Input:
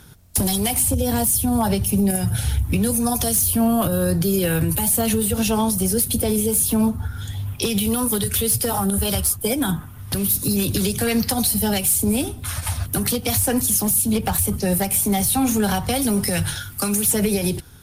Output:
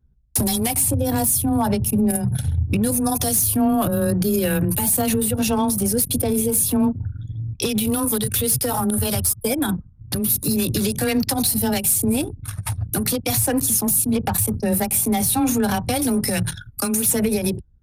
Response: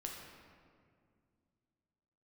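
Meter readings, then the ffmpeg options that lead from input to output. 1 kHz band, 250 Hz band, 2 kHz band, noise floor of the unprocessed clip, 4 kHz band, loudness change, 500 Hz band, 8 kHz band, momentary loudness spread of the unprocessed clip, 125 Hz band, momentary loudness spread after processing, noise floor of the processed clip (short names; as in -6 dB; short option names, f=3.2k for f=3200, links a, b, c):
0.0 dB, 0.0 dB, -1.0 dB, -36 dBFS, -2.0 dB, 0.0 dB, 0.0 dB, -0.5 dB, 6 LU, -0.5 dB, 7 LU, -45 dBFS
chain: -af "anlmdn=398,afreqshift=15,bandreject=f=3.1k:w=15"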